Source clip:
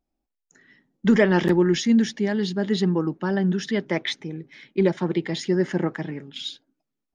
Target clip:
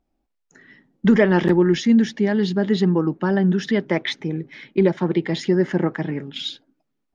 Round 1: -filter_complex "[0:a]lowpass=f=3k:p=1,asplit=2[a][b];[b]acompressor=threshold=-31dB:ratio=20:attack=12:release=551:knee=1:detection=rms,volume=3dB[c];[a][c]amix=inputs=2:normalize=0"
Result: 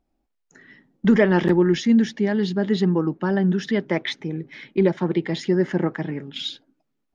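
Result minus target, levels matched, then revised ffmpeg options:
compressor: peak gain reduction +6 dB
-filter_complex "[0:a]lowpass=f=3k:p=1,asplit=2[a][b];[b]acompressor=threshold=-24.5dB:ratio=20:attack=12:release=551:knee=1:detection=rms,volume=3dB[c];[a][c]amix=inputs=2:normalize=0"

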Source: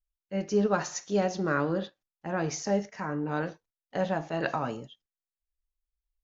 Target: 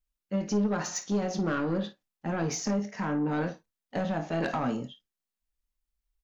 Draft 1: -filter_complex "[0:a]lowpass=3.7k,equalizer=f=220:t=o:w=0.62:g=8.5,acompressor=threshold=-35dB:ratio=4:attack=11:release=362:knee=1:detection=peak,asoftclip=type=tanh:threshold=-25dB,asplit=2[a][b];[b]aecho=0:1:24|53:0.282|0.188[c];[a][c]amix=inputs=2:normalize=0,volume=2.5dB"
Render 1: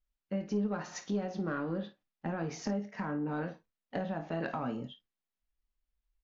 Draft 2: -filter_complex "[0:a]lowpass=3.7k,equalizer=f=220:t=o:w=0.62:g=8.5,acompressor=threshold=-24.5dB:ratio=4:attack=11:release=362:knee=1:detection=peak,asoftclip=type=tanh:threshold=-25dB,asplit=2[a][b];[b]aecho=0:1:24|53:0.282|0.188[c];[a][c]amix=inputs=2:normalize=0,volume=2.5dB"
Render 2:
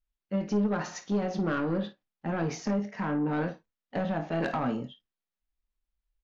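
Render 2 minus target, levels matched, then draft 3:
4000 Hz band -3.5 dB
-filter_complex "[0:a]equalizer=f=220:t=o:w=0.62:g=8.5,acompressor=threshold=-24.5dB:ratio=4:attack=11:release=362:knee=1:detection=peak,asoftclip=type=tanh:threshold=-25dB,asplit=2[a][b];[b]aecho=0:1:24|53:0.282|0.188[c];[a][c]amix=inputs=2:normalize=0,volume=2.5dB"

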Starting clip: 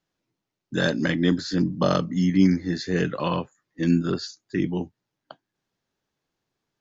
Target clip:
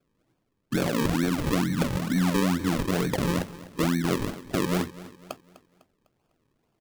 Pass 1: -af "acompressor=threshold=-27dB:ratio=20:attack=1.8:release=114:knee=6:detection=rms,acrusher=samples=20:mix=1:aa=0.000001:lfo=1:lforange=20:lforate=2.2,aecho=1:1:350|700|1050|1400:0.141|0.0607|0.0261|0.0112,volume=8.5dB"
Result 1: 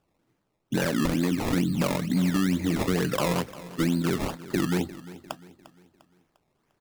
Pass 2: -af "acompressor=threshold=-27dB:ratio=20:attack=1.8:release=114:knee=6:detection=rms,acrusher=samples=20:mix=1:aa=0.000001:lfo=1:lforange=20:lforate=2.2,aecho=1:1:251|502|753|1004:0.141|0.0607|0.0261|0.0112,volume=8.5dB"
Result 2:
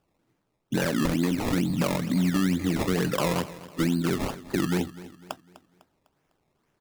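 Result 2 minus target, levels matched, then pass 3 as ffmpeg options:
decimation with a swept rate: distortion -6 dB
-af "acompressor=threshold=-27dB:ratio=20:attack=1.8:release=114:knee=6:detection=rms,acrusher=samples=43:mix=1:aa=0.000001:lfo=1:lforange=43:lforate=2.2,aecho=1:1:251|502|753|1004:0.141|0.0607|0.0261|0.0112,volume=8.5dB"

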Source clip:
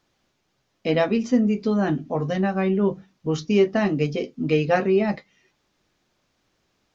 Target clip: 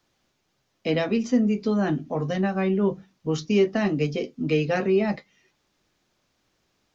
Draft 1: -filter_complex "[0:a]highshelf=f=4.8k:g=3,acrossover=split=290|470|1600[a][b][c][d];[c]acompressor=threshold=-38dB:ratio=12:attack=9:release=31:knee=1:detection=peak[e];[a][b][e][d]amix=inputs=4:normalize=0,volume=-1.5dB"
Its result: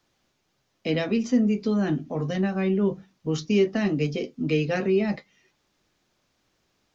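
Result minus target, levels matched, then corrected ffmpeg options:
compressor: peak gain reduction +8 dB
-filter_complex "[0:a]highshelf=f=4.8k:g=3,acrossover=split=290|470|1600[a][b][c][d];[c]acompressor=threshold=-29dB:ratio=12:attack=9:release=31:knee=1:detection=peak[e];[a][b][e][d]amix=inputs=4:normalize=0,volume=-1.5dB"

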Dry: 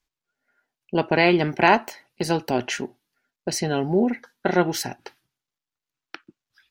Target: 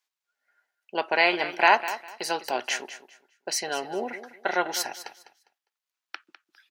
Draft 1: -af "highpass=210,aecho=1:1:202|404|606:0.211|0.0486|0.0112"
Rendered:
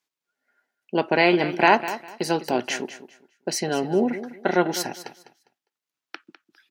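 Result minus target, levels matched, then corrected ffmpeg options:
250 Hz band +10.0 dB
-af "highpass=690,aecho=1:1:202|404|606:0.211|0.0486|0.0112"

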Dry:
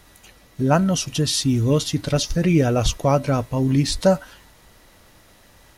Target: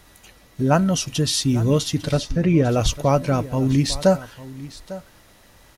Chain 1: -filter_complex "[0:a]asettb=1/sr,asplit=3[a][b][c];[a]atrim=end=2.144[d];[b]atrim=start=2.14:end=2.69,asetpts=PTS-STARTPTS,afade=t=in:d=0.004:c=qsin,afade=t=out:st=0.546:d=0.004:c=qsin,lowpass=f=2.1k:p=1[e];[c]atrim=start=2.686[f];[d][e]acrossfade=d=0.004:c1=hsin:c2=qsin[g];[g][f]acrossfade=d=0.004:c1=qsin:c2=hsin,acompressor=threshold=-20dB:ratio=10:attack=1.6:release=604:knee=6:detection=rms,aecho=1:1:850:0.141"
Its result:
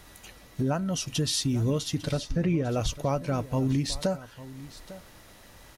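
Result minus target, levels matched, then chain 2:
compressor: peak gain reduction +13 dB
-filter_complex "[0:a]asettb=1/sr,asplit=3[a][b][c];[a]atrim=end=2.144[d];[b]atrim=start=2.14:end=2.69,asetpts=PTS-STARTPTS,afade=t=in:d=0.004:c=qsin,afade=t=out:st=0.546:d=0.004:c=qsin,lowpass=f=2.1k:p=1[e];[c]atrim=start=2.686[f];[d][e]acrossfade=d=0.004:c1=hsin:c2=qsin[g];[g][f]acrossfade=d=0.004:c1=qsin:c2=hsin,aecho=1:1:850:0.141"

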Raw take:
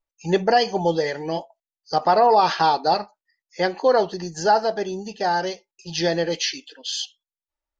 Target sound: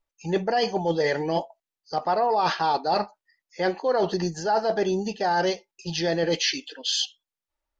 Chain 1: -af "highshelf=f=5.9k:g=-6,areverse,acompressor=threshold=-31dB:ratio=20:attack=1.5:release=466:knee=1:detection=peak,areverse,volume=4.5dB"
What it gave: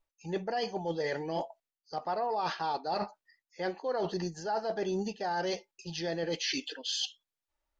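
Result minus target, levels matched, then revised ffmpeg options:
compressor: peak gain reduction +9.5 dB
-af "highshelf=f=5.9k:g=-6,areverse,acompressor=threshold=-21dB:ratio=20:attack=1.5:release=466:knee=1:detection=peak,areverse,volume=4.5dB"

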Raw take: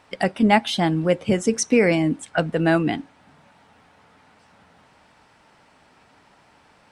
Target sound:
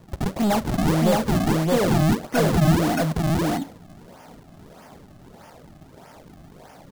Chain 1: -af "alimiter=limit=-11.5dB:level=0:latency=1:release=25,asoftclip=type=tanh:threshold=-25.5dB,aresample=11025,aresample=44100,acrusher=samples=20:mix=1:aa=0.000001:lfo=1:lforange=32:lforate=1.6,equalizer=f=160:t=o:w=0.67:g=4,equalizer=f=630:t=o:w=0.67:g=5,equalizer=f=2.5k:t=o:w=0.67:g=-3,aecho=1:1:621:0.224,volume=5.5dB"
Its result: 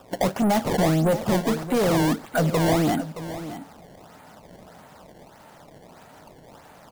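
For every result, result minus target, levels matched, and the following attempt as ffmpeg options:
echo-to-direct -11.5 dB; decimation with a swept rate: distortion -8 dB
-af "alimiter=limit=-11.5dB:level=0:latency=1:release=25,asoftclip=type=tanh:threshold=-25.5dB,aresample=11025,aresample=44100,acrusher=samples=20:mix=1:aa=0.000001:lfo=1:lforange=32:lforate=1.6,equalizer=f=160:t=o:w=0.67:g=4,equalizer=f=630:t=o:w=0.67:g=5,equalizer=f=2.5k:t=o:w=0.67:g=-3,aecho=1:1:621:0.841,volume=5.5dB"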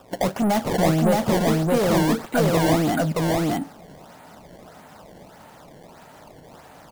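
decimation with a swept rate: distortion -8 dB
-af "alimiter=limit=-11.5dB:level=0:latency=1:release=25,asoftclip=type=tanh:threshold=-25.5dB,aresample=11025,aresample=44100,acrusher=samples=53:mix=1:aa=0.000001:lfo=1:lforange=84.8:lforate=1.6,equalizer=f=160:t=o:w=0.67:g=4,equalizer=f=630:t=o:w=0.67:g=5,equalizer=f=2.5k:t=o:w=0.67:g=-3,aecho=1:1:621:0.841,volume=5.5dB"

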